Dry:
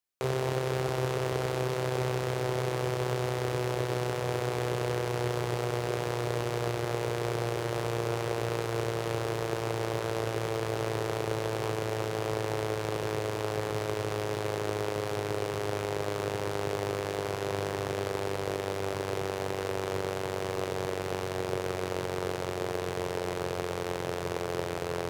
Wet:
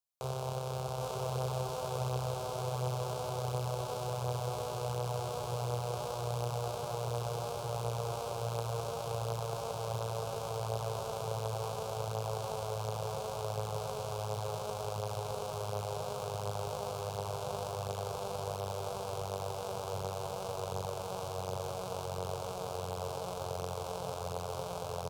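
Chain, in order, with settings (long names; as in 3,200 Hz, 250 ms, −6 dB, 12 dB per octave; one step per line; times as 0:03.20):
phaser with its sweep stopped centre 780 Hz, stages 4
on a send: single-tap delay 801 ms −3 dB
on the sum: level −3.5 dB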